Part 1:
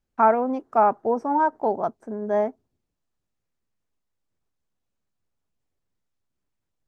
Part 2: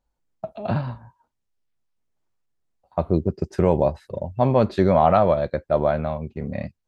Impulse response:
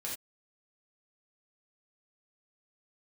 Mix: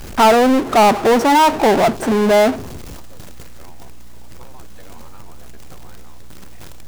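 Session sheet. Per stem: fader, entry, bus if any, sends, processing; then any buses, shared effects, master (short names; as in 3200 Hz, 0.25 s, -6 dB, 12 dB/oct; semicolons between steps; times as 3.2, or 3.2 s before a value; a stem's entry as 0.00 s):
+2.0 dB, 0.00 s, no send, power-law curve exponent 0.35
-14.0 dB, 0.00 s, no send, spectral gate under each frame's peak -10 dB weak; compressor, threshold -27 dBFS, peak gain reduction 9 dB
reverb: off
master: hum 60 Hz, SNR 30 dB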